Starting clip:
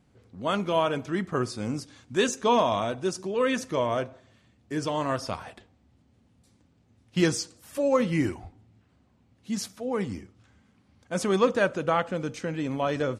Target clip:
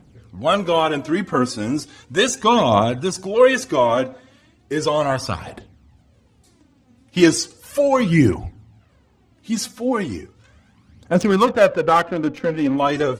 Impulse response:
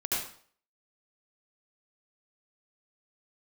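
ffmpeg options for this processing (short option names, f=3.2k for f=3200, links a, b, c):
-filter_complex "[0:a]aphaser=in_gain=1:out_gain=1:delay=4.1:decay=0.56:speed=0.36:type=triangular,asettb=1/sr,asplit=3[a][b][c];[a]atrim=end=11.144[d];[b]atrim=start=11.14:end=12.78,asetpts=PTS-STARTPTS,afade=t=in:d=0.004:c=qsin,afade=t=out:st=1.636:d=0.004:c=qsin,adynamicsmooth=sensitivity=5.5:basefreq=1.4k[e];[c]atrim=start=12.776[f];[d][e]acrossfade=d=0.004:c1=hsin:c2=qsin[g];[g][f]acrossfade=d=0.004:c1=qsin:c2=hsin,volume=7.5dB"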